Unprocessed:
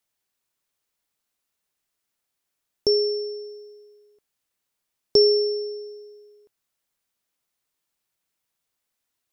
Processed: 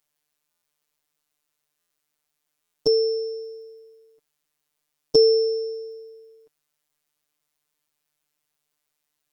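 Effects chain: robotiser 149 Hz; stuck buffer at 0.51/1.79/2.62, samples 512, times 9; gain +4 dB

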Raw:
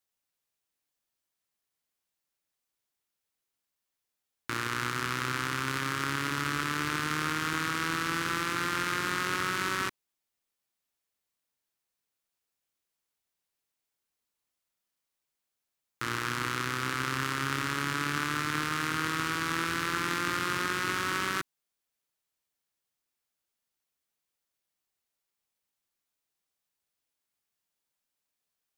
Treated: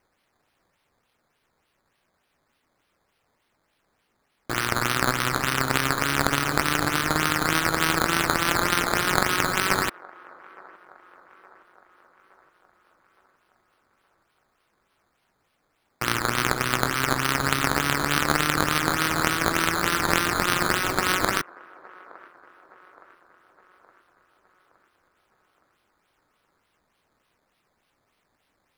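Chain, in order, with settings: wow and flutter 20 cents; high shelf 4600 Hz +10 dB; decimation with a swept rate 11×, swing 100% 3.4 Hz; band-limited delay 0.867 s, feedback 52%, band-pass 790 Hz, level -21 dB; gain +6 dB

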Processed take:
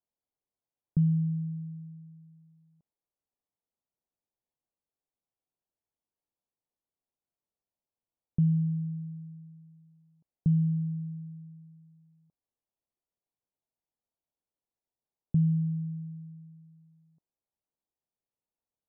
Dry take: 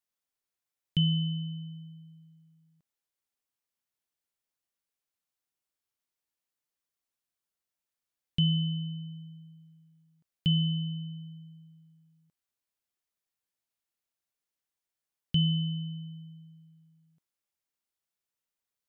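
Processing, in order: inverse Chebyshev low-pass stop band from 2400 Hz, stop band 50 dB; gain +2 dB

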